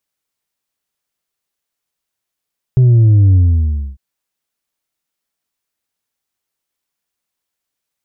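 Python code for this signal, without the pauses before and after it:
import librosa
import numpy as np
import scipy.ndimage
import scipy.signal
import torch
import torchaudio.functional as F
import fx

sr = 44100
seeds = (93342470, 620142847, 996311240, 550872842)

y = fx.sub_drop(sr, level_db=-6, start_hz=130.0, length_s=1.2, drive_db=3, fade_s=0.63, end_hz=65.0)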